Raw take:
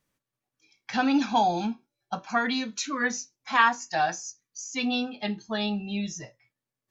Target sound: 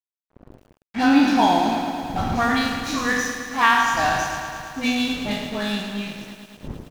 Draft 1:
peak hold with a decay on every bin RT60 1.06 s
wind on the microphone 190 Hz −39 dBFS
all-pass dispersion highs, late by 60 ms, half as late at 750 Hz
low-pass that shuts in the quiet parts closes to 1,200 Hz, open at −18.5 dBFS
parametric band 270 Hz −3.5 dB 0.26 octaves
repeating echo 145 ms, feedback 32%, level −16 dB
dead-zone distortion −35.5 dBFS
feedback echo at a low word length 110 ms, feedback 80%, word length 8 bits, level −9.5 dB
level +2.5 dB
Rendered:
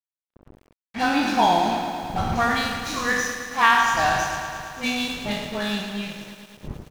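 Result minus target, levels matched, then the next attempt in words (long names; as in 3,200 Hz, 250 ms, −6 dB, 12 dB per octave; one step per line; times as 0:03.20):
250 Hz band −5.0 dB
peak hold with a decay on every bin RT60 1.06 s
wind on the microphone 190 Hz −39 dBFS
all-pass dispersion highs, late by 60 ms, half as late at 750 Hz
low-pass that shuts in the quiet parts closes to 1,200 Hz, open at −18.5 dBFS
parametric band 270 Hz +6 dB 0.26 octaves
repeating echo 145 ms, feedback 32%, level −16 dB
dead-zone distortion −35.5 dBFS
feedback echo at a low word length 110 ms, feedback 80%, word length 8 bits, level −9.5 dB
level +2.5 dB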